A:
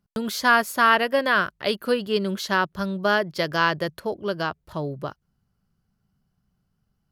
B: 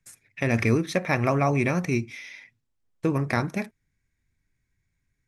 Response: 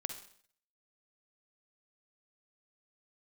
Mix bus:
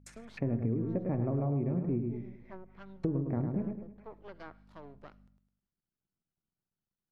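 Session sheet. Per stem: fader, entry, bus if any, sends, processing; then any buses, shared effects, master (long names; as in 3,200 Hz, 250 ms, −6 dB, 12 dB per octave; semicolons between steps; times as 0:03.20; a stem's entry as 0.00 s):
−18.5 dB, 0.00 s, send −10 dB, no echo send, half-wave rectification
−0.5 dB, 0.00 s, send −12.5 dB, echo send −5 dB, noise gate with hold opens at −45 dBFS; mains hum 50 Hz, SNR 30 dB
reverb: on, RT60 0.55 s, pre-delay 44 ms
echo: repeating echo 105 ms, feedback 38%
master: treble cut that deepens with the level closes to 380 Hz, closed at −35 dBFS; low-shelf EQ 90 Hz −6.5 dB; downward compressor 6 to 1, threshold −28 dBFS, peak gain reduction 11 dB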